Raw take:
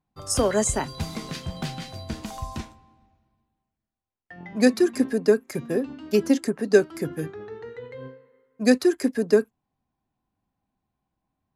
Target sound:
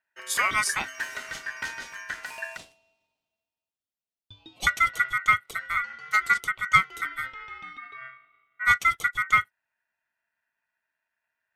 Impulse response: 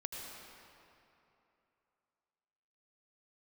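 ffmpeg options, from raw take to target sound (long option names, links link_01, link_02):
-filter_complex "[0:a]asettb=1/sr,asplit=3[link_01][link_02][link_03];[link_01]atrim=end=2.574[link_04];[link_02]atrim=start=2.57:end=4.67,asetpts=PTS-STARTPTS,afade=type=in:duration=0.004:curve=qsin,afade=type=out:start_time=2.096:duration=0.004:curve=qsin,highpass=frequency=1100:width=0.5412,highpass=frequency=1100:width=1.3066[link_05];[link_03]atrim=start=4.666[link_06];[link_04][link_05]acrossfade=duration=0.004:curve1=hsin:curve2=qsin[link_07];[link_07][link_06]acrossfade=duration=0.004:curve1=qsin:curve2=hsin,asplit=3[link_08][link_09][link_10];[link_08]afade=type=out:start_time=7.76:duration=0.02[link_11];[link_09]equalizer=frequency=4100:width=0.7:gain=-15,afade=type=in:start_time=7.76:duration=0.02,afade=type=out:start_time=8.69:duration=0.02[link_12];[link_10]afade=type=in:start_time=8.69:duration=0.02[link_13];[link_11][link_12][link_13]amix=inputs=3:normalize=0,aeval=exprs='val(0)*sin(2*PI*1700*n/s)':channel_layout=same"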